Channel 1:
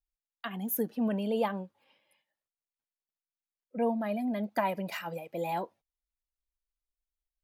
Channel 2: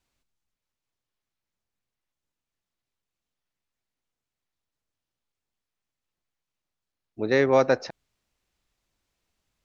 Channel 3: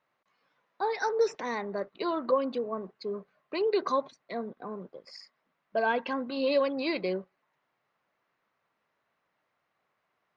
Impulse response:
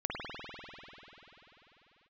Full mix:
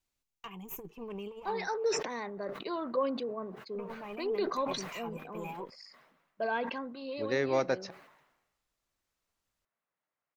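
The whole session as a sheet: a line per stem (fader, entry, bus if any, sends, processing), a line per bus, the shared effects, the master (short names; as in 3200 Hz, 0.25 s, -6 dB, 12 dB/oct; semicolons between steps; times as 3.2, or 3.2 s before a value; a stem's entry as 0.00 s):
-9.0 dB, 0.00 s, no send, one diode to ground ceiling -31.5 dBFS; ripple EQ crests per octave 0.73, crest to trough 15 dB; negative-ratio compressor -32 dBFS, ratio -0.5
-9.5 dB, 0.00 s, no send, high shelf 5200 Hz +7 dB
6.68 s -5.5 dB -> 7.26 s -14 dB, 0.65 s, no send, sustainer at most 57 dB/s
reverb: off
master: dry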